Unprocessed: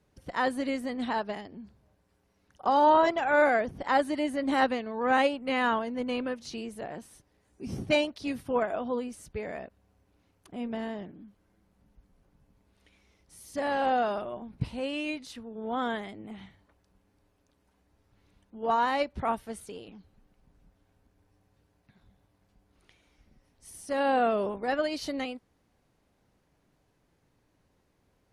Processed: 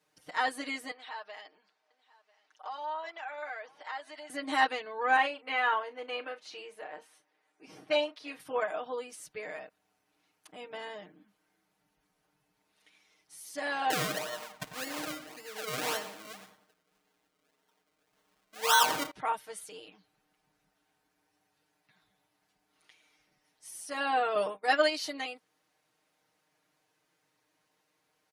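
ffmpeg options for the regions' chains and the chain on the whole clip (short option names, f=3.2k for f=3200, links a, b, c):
-filter_complex "[0:a]asettb=1/sr,asplit=3[a][b][c];[a]atrim=end=0.914[d];[b]atrim=start=0.91:end=4.3,asetpts=PTS-STARTPTS,afade=t=in:d=0.004:c=qsin,afade=t=out:st=3.386:d=0.004:c=qsin,acompressor=threshold=-37dB:ratio=3:attack=3.2:release=140:knee=1:detection=peak,highpass=600,lowpass=5.5k,aecho=1:1:994:0.0708,atrim=end_sample=149499[e];[c]atrim=start=4.296[f];[d][e]acrossfade=d=0.004:c1=hsin:c2=qsin[g];[g][f]acrossfade=d=0.004:c1=qsin:c2=hsin,asettb=1/sr,asplit=3[h][i][j];[h]atrim=end=5.164[k];[i]atrim=start=5.16:end=8.4,asetpts=PTS-STARTPTS,afade=t=in:d=0.004:c=qsin,afade=t=out:st=3.236:d=0.004:c=qsin,bass=f=250:g=-13,treble=f=4k:g=-13,asplit=2[l][m];[m]adelay=37,volume=-13.5dB[n];[l][n]amix=inputs=2:normalize=0,atrim=end_sample=142884[o];[j]atrim=start=8.396[p];[k][o]acrossfade=d=0.004:c1=hsin:c2=qsin[q];[q][p]acrossfade=d=0.004:c1=qsin:c2=hsin,asettb=1/sr,asplit=3[r][s][t];[r]atrim=end=13.904[u];[s]atrim=start=13.9:end=19.11,asetpts=PTS-STARTPTS,afade=t=in:d=0.004:c=qsin,afade=t=out:st=5.206:d=0.004:c=qsin,aecho=1:1:4.4:0.39,atrim=end_sample=229761,acrusher=samples=35:mix=1:aa=0.000001:lfo=1:lforange=35:lforate=1.8,asplit=2[v][w];[w]adelay=95,lowpass=f=2.5k:p=1,volume=-10dB,asplit=2[x][y];[y]adelay=95,lowpass=f=2.5k:p=1,volume=0.4,asplit=2[z][aa];[aa]adelay=95,lowpass=f=2.5k:p=1,volume=0.4,asplit=2[ab][ac];[ac]adelay=95,lowpass=f=2.5k:p=1,volume=0.4[ad];[v][x][z][ab][ad]amix=inputs=5:normalize=0,atrim=end_sample=229761[ae];[t]atrim=start=19.106[af];[u][ae]acrossfade=d=0.004:c1=hsin:c2=qsin[ag];[ag][af]acrossfade=d=0.004:c1=qsin:c2=hsin,asettb=1/sr,asplit=3[ah][ai][aj];[ah]atrim=end=24.354[ak];[ai]atrim=start=24.35:end=24.9,asetpts=PTS-STARTPTS,afade=t=in:d=0.004:c=qsin,afade=t=out:st=0.546:d=0.004:c=qsin,highshelf=f=4.9k:g=7,acontrast=23,agate=range=-33dB:threshold=-24dB:ratio=3:release=100:detection=peak[al];[aj]atrim=start=24.896[am];[ak][al]acrossfade=d=0.004:c1=hsin:c2=qsin[an];[an][am]acrossfade=d=0.004:c1=qsin:c2=hsin,highpass=f=1.2k:p=1,aecho=1:1:6.5:0.94"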